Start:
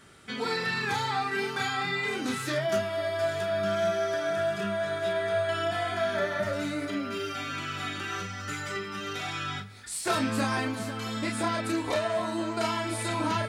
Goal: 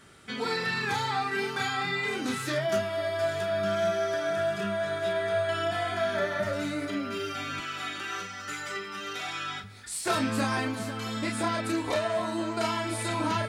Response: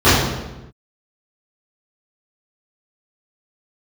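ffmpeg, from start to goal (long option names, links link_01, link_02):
-filter_complex "[0:a]asettb=1/sr,asplit=3[link_01][link_02][link_03];[link_01]atrim=end=7.604[link_04];[link_02]atrim=start=7.6:end=9.64,asetpts=PTS-STARTPTS,afade=type=in:duration=0.004:curve=qsin,afade=type=out:start_time=2.036:duration=0.004:curve=qsin,highpass=frequency=400:poles=1[link_05];[link_03]atrim=start=9.636[link_06];[link_04][link_05]acrossfade=duration=0.004:curve1=hsin:curve2=qsin[link_07];[link_07][link_06]acrossfade=duration=0.004:curve1=qsin:curve2=hsin"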